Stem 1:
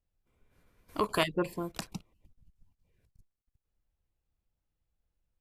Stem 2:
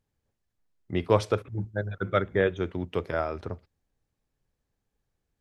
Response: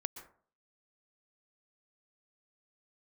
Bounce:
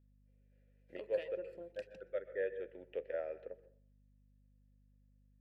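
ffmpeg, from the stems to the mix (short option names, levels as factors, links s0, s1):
-filter_complex "[0:a]acompressor=threshold=0.0224:ratio=6,volume=0.794,asplit=3[s0][s1][s2];[s1]volume=0.447[s3];[1:a]bass=f=250:g=-7,treble=f=4000:g=-10,volume=0.501,asplit=2[s4][s5];[s5]volume=0.708[s6];[s2]apad=whole_len=238363[s7];[s4][s7]sidechaincompress=threshold=0.00316:ratio=8:attack=16:release=869[s8];[2:a]atrim=start_sample=2205[s9];[s3][s6]amix=inputs=2:normalize=0[s10];[s10][s9]afir=irnorm=-1:irlink=0[s11];[s0][s8][s11]amix=inputs=3:normalize=0,asplit=3[s12][s13][s14];[s12]bandpass=f=530:t=q:w=8,volume=1[s15];[s13]bandpass=f=1840:t=q:w=8,volume=0.501[s16];[s14]bandpass=f=2480:t=q:w=8,volume=0.355[s17];[s15][s16][s17]amix=inputs=3:normalize=0,aeval=exprs='val(0)+0.000447*(sin(2*PI*50*n/s)+sin(2*PI*2*50*n/s)/2+sin(2*PI*3*50*n/s)/3+sin(2*PI*4*50*n/s)/4+sin(2*PI*5*50*n/s)/5)':c=same"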